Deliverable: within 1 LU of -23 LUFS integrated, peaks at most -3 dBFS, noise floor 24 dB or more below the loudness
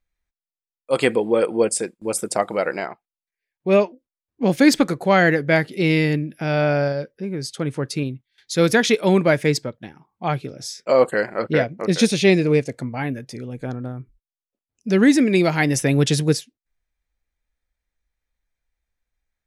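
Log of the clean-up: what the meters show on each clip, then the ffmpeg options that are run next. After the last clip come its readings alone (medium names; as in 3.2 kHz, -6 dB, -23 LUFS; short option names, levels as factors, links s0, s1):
loudness -20.0 LUFS; peak level -2.5 dBFS; loudness target -23.0 LUFS
-> -af "volume=0.708"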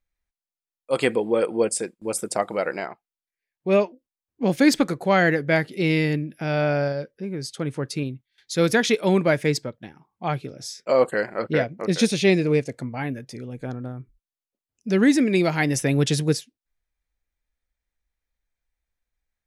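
loudness -23.0 LUFS; peak level -5.5 dBFS; noise floor -93 dBFS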